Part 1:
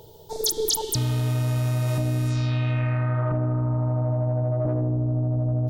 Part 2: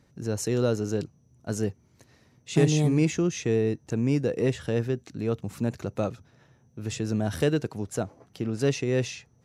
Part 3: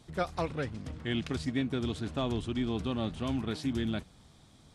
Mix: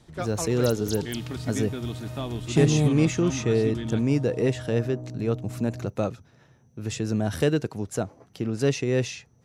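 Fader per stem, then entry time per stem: -13.0 dB, +1.5 dB, -1.0 dB; 0.20 s, 0.00 s, 0.00 s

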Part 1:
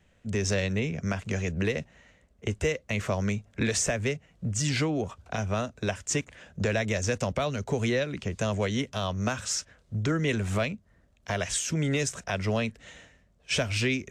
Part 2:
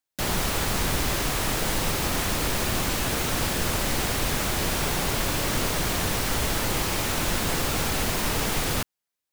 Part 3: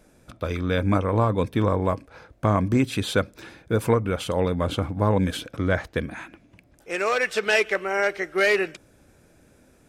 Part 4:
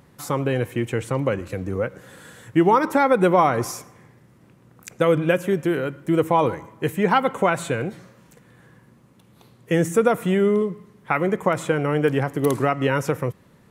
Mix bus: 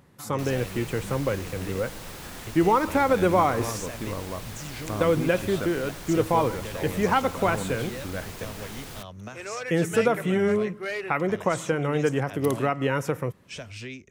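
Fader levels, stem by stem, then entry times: -11.5 dB, -14.5 dB, -11.5 dB, -4.0 dB; 0.00 s, 0.20 s, 2.45 s, 0.00 s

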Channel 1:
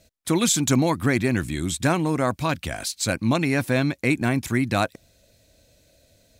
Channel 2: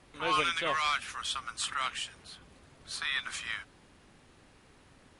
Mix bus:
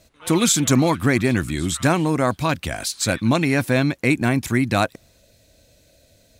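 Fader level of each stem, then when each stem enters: +3.0 dB, -8.5 dB; 0.00 s, 0.00 s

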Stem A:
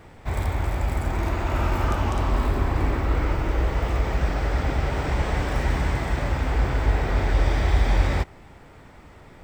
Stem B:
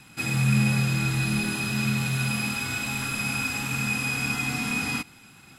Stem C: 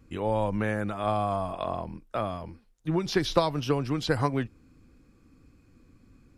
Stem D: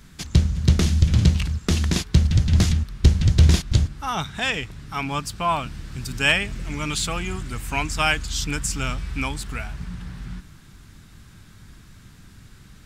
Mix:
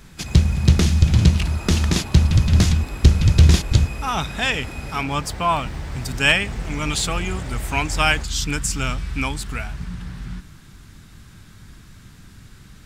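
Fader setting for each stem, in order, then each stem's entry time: -10.5 dB, -11.5 dB, mute, +2.5 dB; 0.00 s, 0.00 s, mute, 0.00 s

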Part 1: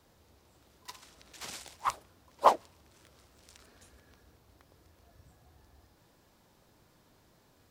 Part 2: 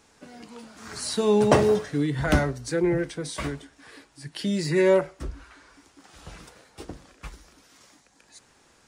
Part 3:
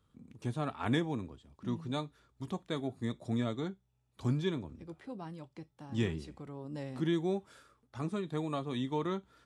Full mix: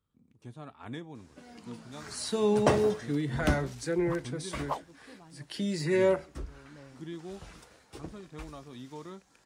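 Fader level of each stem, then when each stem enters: -12.0 dB, -5.5 dB, -10.0 dB; 2.25 s, 1.15 s, 0.00 s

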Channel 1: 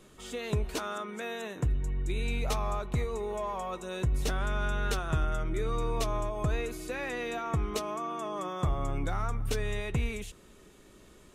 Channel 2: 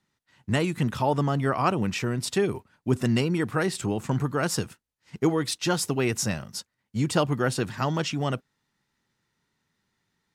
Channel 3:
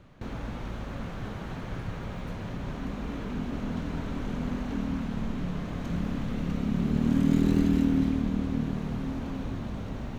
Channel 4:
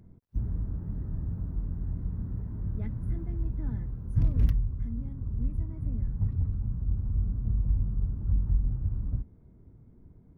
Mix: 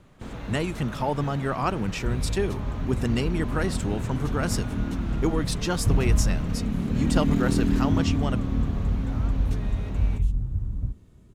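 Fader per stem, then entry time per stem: -11.5 dB, -2.5 dB, -0.5 dB, +2.0 dB; 0.00 s, 0.00 s, 0.00 s, 1.70 s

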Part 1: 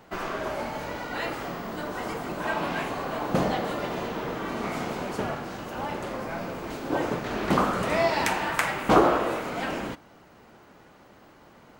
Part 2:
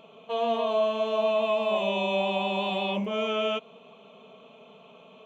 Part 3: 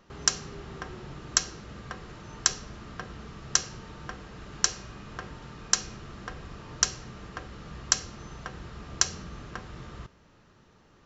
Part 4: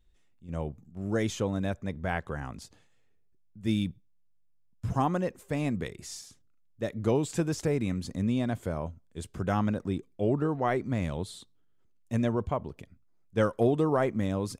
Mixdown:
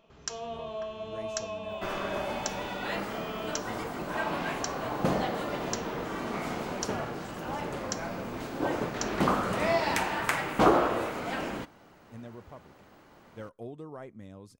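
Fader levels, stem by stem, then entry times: -3.0 dB, -12.0 dB, -12.5 dB, -17.5 dB; 1.70 s, 0.00 s, 0.00 s, 0.00 s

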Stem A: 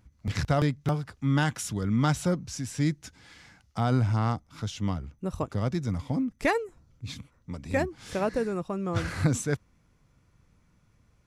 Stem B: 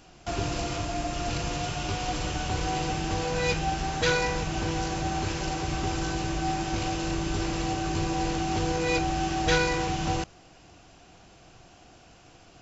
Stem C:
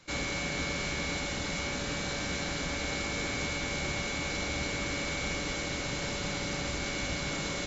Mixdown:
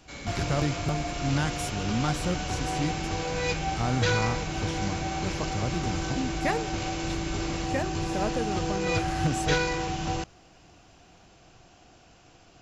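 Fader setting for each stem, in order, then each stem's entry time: -3.5 dB, -2.0 dB, -8.0 dB; 0.00 s, 0.00 s, 0.00 s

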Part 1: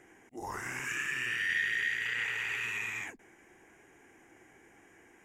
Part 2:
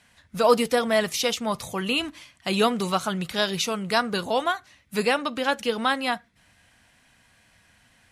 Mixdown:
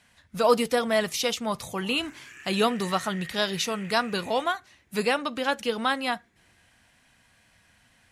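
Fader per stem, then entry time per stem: -12.0 dB, -2.0 dB; 1.40 s, 0.00 s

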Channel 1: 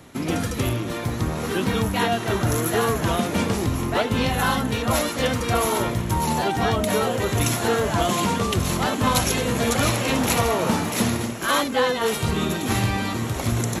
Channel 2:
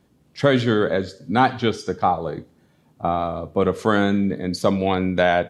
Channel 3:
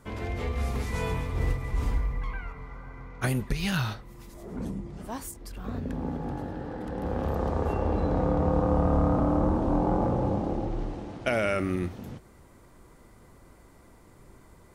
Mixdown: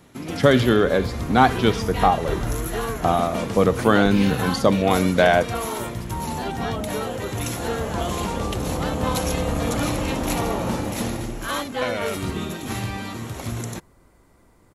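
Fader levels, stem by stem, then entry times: -6.0 dB, +1.5 dB, -2.0 dB; 0.00 s, 0.00 s, 0.55 s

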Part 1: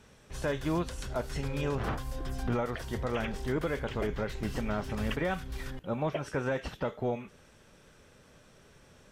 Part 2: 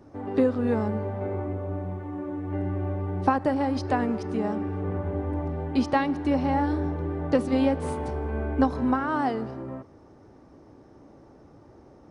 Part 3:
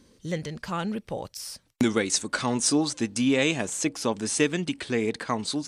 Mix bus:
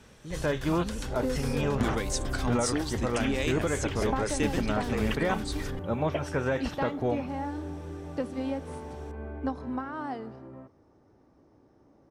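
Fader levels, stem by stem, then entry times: +3.0 dB, -9.5 dB, -8.0 dB; 0.00 s, 0.85 s, 0.00 s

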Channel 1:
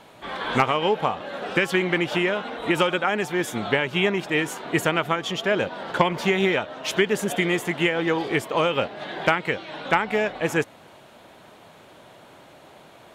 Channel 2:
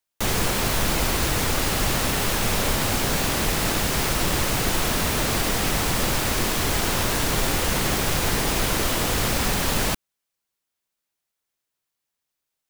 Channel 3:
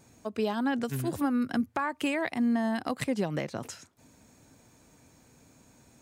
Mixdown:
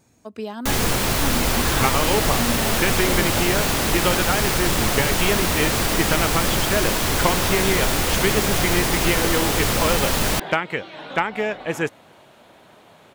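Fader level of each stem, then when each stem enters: -1.0 dB, +2.0 dB, -1.5 dB; 1.25 s, 0.45 s, 0.00 s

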